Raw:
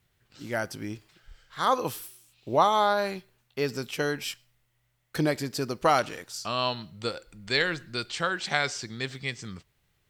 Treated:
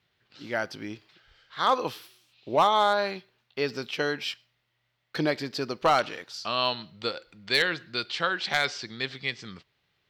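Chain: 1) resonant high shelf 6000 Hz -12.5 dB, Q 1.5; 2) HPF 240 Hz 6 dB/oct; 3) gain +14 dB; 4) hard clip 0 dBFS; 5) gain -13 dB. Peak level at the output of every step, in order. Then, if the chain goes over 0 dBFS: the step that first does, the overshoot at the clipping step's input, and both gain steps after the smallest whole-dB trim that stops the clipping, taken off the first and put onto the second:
-6.5, -6.0, +8.0, 0.0, -13.0 dBFS; step 3, 8.0 dB; step 3 +6 dB, step 5 -5 dB

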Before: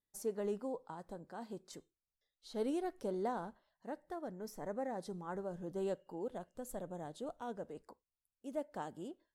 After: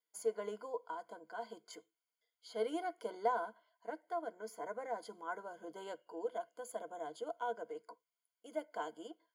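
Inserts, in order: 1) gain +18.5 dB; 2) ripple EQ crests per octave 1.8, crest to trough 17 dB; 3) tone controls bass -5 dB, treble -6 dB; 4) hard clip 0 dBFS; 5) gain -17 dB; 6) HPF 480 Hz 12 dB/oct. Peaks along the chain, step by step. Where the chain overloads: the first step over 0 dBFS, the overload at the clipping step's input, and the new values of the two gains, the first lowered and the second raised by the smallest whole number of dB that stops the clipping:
-8.0, -2.5, -3.5, -3.5, -20.5, -21.5 dBFS; no overload

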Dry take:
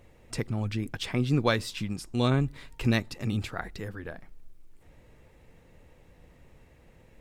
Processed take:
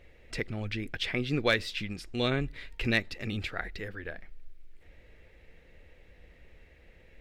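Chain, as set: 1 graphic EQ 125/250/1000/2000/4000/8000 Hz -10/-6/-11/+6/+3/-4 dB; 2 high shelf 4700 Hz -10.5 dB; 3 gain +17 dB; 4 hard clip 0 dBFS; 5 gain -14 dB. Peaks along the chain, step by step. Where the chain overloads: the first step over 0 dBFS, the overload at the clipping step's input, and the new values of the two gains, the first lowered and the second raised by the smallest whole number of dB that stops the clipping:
-11.5, -13.5, +3.5, 0.0, -14.0 dBFS; step 3, 3.5 dB; step 3 +13 dB, step 5 -10 dB

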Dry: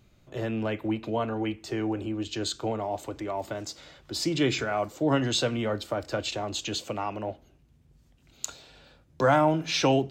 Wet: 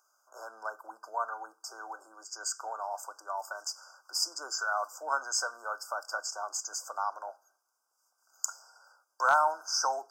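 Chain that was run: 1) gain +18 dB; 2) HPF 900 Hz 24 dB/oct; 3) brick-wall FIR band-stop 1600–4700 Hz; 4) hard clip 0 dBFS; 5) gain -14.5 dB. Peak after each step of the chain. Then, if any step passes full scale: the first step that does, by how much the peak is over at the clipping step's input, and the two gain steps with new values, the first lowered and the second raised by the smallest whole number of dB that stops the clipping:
+7.0, +7.0, +6.0, 0.0, -14.5 dBFS; step 1, 6.0 dB; step 1 +12 dB, step 5 -8.5 dB

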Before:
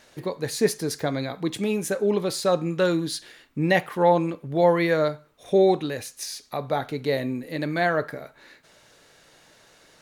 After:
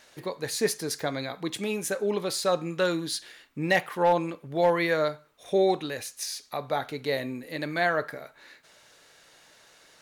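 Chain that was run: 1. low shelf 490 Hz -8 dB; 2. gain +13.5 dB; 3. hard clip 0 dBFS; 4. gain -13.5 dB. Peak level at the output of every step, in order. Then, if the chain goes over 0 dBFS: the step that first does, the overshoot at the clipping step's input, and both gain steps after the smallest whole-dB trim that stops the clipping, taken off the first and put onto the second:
-8.5, +5.0, 0.0, -13.5 dBFS; step 2, 5.0 dB; step 2 +8.5 dB, step 4 -8.5 dB

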